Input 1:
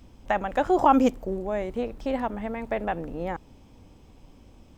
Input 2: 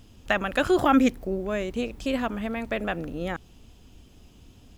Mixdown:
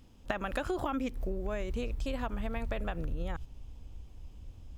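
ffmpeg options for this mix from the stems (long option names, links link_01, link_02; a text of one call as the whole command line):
ffmpeg -i stem1.wav -i stem2.wav -filter_complex "[0:a]volume=-9.5dB,asplit=2[link_01][link_02];[1:a]asubboost=boost=11.5:cutoff=89,acompressor=threshold=-24dB:ratio=3,volume=1dB[link_03];[link_02]apad=whole_len=210649[link_04];[link_03][link_04]sidechaingate=range=-12dB:threshold=-50dB:ratio=16:detection=peak[link_05];[link_01][link_05]amix=inputs=2:normalize=0,acompressor=threshold=-31dB:ratio=5" out.wav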